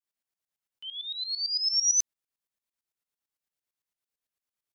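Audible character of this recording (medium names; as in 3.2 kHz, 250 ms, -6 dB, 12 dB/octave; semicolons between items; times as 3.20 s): tremolo saw up 8.9 Hz, depth 85%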